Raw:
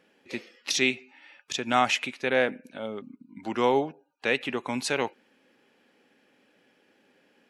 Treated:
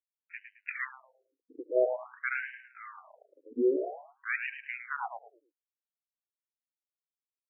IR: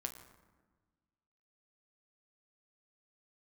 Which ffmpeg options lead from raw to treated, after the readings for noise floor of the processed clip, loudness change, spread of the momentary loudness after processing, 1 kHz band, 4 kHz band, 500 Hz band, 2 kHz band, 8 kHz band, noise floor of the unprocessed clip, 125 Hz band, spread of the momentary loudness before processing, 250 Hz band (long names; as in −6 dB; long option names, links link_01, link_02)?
below −85 dBFS, −6.0 dB, 19 LU, −12.0 dB, below −25 dB, −4.0 dB, −6.0 dB, below −40 dB, −66 dBFS, below −30 dB, 15 LU, −7.0 dB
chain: -filter_complex "[0:a]aeval=exprs='val(0)*gte(abs(val(0)),0.00944)':channel_layout=same,aeval=exprs='0.398*(cos(1*acos(clip(val(0)/0.398,-1,1)))-cos(1*PI/2))+0.2*(cos(2*acos(clip(val(0)/0.398,-1,1)))-cos(2*PI/2))':channel_layout=same,highpass=frequency=160:width_type=q:width=0.5412,highpass=frequency=160:width_type=q:width=1.307,lowpass=frequency=2900:width_type=q:width=0.5176,lowpass=frequency=2900:width_type=q:width=0.7071,lowpass=frequency=2900:width_type=q:width=1.932,afreqshift=-120,acrossover=split=640[link_01][link_02];[link_01]aeval=exprs='val(0)*(1-0.7/2+0.7/2*cos(2*PI*3.3*n/s))':channel_layout=same[link_03];[link_02]aeval=exprs='val(0)*(1-0.7/2-0.7/2*cos(2*PI*3.3*n/s))':channel_layout=same[link_04];[link_03][link_04]amix=inputs=2:normalize=0,asplit=2[link_05][link_06];[link_06]aecho=0:1:108|216|324|432:0.398|0.123|0.0383|0.0119[link_07];[link_05][link_07]amix=inputs=2:normalize=0,afftfilt=real='re*between(b*sr/1024,360*pow(2200/360,0.5+0.5*sin(2*PI*0.49*pts/sr))/1.41,360*pow(2200/360,0.5+0.5*sin(2*PI*0.49*pts/sr))*1.41)':imag='im*between(b*sr/1024,360*pow(2200/360,0.5+0.5*sin(2*PI*0.49*pts/sr))/1.41,360*pow(2200/360,0.5+0.5*sin(2*PI*0.49*pts/sr))*1.41)':win_size=1024:overlap=0.75,volume=2.5dB"